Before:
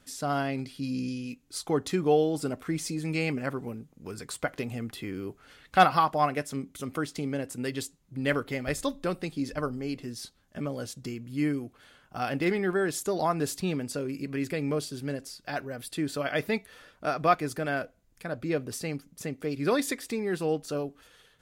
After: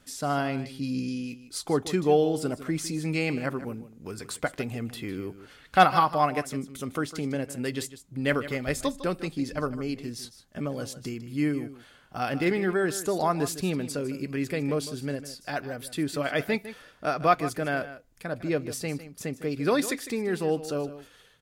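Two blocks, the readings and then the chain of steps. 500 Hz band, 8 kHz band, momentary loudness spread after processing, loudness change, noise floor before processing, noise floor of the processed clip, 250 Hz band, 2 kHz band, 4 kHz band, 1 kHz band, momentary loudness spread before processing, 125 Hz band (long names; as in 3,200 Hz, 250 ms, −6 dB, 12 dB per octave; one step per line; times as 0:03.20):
+1.5 dB, +1.5 dB, 13 LU, +1.5 dB, −64 dBFS, −57 dBFS, +1.5 dB, +1.5 dB, +1.5 dB, +1.5 dB, 12 LU, +1.5 dB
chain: single-tap delay 154 ms −14 dB
level +1.5 dB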